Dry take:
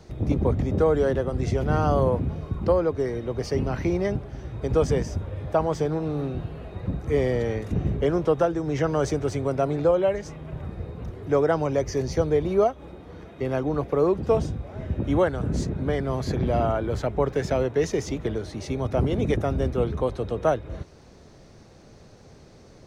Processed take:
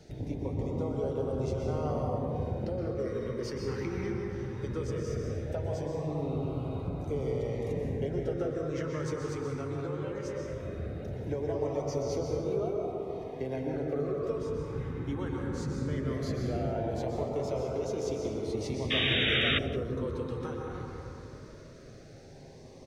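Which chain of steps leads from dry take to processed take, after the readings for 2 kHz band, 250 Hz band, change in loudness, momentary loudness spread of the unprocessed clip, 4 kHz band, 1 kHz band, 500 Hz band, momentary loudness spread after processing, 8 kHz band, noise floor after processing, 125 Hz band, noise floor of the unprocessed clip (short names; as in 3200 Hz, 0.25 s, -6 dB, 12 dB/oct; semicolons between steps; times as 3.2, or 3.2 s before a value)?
0.0 dB, -7.5 dB, -8.0 dB, 11 LU, +7.5 dB, -11.0 dB, -9.0 dB, 7 LU, -7.0 dB, -49 dBFS, -7.5 dB, -50 dBFS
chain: low shelf 120 Hz -5.5 dB; compressor, threshold -30 dBFS, peak gain reduction 13 dB; flange 0.14 Hz, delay 6.9 ms, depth 2.8 ms, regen -49%; plate-style reverb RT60 3.3 s, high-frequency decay 0.3×, pre-delay 0.11 s, DRR -1.5 dB; painted sound noise, 18.9–19.59, 1100–3800 Hz -28 dBFS; LFO notch sine 0.18 Hz 620–1800 Hz; outdoor echo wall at 30 m, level -18 dB; gain +1 dB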